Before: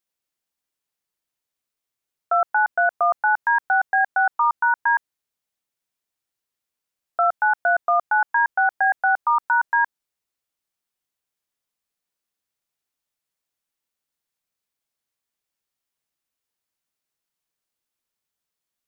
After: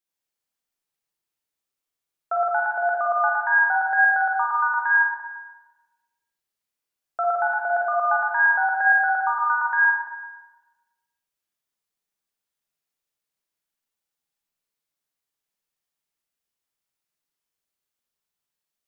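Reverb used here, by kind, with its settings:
four-comb reverb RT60 1.2 s, DRR −2.5 dB
level −5.5 dB

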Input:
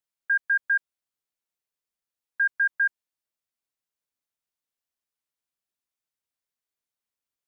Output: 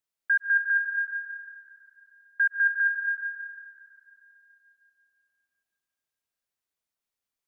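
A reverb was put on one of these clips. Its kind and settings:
comb and all-pass reverb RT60 3.1 s, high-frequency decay 0.65×, pre-delay 100 ms, DRR 4 dB

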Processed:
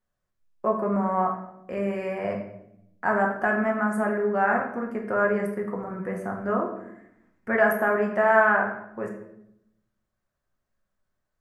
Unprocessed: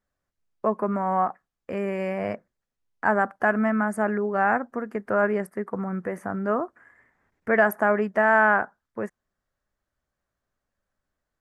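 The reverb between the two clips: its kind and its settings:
rectangular room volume 210 cubic metres, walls mixed, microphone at 0.98 metres
level −3.5 dB

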